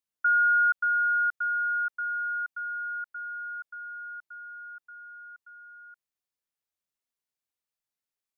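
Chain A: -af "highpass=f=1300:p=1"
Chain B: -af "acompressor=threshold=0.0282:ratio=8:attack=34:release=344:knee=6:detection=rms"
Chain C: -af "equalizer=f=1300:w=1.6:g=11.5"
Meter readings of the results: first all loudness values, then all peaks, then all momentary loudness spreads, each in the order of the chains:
-29.0 LUFS, -34.5 LUFS, -16.0 LUFS; -21.0 dBFS, -21.5 dBFS, -8.0 dBFS; 22 LU, 16 LU, 22 LU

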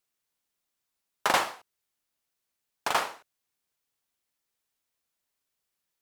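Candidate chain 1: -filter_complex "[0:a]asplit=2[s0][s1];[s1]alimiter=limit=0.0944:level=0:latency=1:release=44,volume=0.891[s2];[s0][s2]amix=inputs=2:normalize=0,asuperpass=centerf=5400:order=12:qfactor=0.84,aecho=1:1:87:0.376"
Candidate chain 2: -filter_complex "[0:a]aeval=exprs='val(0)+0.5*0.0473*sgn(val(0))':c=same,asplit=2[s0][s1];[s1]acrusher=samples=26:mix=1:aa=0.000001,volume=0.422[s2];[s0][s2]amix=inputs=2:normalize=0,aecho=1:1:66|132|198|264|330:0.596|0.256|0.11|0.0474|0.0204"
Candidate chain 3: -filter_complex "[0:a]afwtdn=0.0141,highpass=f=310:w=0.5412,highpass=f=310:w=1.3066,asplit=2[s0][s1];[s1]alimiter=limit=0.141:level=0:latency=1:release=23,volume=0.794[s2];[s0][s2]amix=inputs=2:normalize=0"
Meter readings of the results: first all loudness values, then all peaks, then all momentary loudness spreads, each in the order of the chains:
-33.0 LUFS, -26.5 LUFS, -26.0 LUFS; -16.0 dBFS, -5.0 dBFS, -7.0 dBFS; 16 LU, 6 LU, 10 LU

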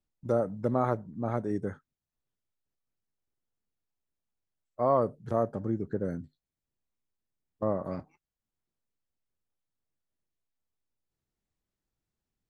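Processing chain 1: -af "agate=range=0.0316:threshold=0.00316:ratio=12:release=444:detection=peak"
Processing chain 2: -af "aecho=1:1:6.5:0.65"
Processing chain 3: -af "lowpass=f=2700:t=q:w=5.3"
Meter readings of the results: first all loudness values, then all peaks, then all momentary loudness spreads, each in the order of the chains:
-31.0 LUFS, -30.0 LUFS, -31.0 LUFS; -14.0 dBFS, -13.0 dBFS, -13.0 dBFS; 12 LU, 11 LU, 12 LU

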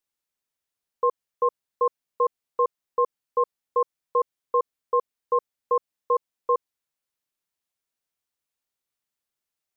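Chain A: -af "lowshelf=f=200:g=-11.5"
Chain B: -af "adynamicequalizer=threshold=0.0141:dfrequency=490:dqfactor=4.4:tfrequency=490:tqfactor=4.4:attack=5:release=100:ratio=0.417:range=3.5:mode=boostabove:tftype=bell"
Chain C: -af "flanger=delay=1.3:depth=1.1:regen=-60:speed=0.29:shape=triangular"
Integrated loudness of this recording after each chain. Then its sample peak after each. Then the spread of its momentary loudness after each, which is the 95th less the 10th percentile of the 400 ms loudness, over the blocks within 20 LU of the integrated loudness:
-28.5 LUFS, -24.0 LUFS, -31.5 LUFS; -14.5 dBFS, -9.5 dBFS, -16.5 dBFS; 1 LU, 1 LU, 2 LU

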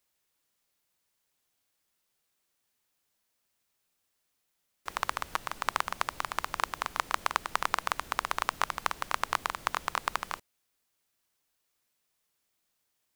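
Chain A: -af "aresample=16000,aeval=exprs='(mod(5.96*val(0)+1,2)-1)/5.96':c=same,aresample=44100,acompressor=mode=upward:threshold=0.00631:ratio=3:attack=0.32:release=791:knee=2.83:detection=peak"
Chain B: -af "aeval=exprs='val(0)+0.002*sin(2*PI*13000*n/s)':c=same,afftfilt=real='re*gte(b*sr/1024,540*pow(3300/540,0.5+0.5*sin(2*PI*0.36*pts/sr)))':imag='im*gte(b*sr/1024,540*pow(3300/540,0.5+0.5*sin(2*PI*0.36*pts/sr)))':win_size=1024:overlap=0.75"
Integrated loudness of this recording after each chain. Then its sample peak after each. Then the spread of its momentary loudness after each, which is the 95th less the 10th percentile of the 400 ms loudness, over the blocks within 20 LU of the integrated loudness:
-35.5 LUFS, -35.5 LUFS; -12.0 dBFS, -5.0 dBFS; 3 LU, 22 LU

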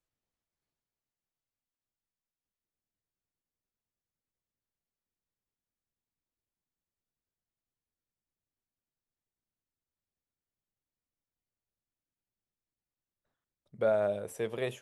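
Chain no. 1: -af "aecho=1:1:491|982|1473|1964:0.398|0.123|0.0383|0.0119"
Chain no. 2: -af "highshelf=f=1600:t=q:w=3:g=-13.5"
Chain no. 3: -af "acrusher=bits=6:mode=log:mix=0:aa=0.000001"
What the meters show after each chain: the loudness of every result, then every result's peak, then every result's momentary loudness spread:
-31.5 LUFS, -30.0 LUFS, -32.0 LUFS; -18.0 dBFS, -15.5 dBFS, -18.0 dBFS; 5 LU, 8 LU, 8 LU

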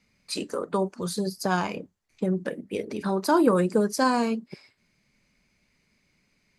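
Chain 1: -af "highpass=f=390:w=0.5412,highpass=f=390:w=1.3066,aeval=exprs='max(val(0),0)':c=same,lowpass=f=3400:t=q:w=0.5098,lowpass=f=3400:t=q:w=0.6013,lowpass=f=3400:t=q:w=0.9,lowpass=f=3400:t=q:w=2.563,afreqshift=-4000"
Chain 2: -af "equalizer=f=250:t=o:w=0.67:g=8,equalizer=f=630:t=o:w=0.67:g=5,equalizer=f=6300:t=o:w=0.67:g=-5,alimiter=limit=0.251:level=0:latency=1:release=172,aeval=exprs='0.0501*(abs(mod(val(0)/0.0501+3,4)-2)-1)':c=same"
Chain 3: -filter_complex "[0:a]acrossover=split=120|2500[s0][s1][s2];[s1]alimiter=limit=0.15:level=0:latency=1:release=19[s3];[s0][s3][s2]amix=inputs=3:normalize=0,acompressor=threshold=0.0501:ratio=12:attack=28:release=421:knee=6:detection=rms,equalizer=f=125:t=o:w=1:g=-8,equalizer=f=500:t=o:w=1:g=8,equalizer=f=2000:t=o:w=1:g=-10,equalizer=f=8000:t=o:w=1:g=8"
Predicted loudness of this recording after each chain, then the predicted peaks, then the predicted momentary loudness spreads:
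-28.5 LUFS, -32.5 LUFS, -30.0 LUFS; -13.0 dBFS, -26.0 dBFS, -14.0 dBFS; 14 LU, 7 LU, 9 LU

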